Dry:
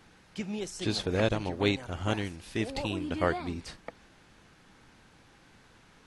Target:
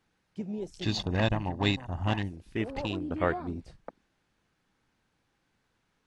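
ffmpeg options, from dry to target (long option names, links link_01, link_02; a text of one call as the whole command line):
ffmpeg -i in.wav -filter_complex "[0:a]afwtdn=0.00891,asettb=1/sr,asplit=3[link_01][link_02][link_03];[link_01]atrim=end=0.824[link_04];[link_02]atrim=start=0.82:end=2.31,asetpts=PTS-STARTPTS,afade=type=in:duration=0.004:curve=qsin,afade=type=out:start_time=1.486:duration=0.004:curve=qsin,aecho=1:1:1.1:0.58,atrim=end_sample=65709[link_05];[link_03]atrim=start=2.306[link_06];[link_04][link_05]acrossfade=duration=0.004:curve1=hsin:curve2=qsin[link_07];[link_07][link_06]acrossfade=duration=0.004:curve1=qsin:curve2=hsin" out.wav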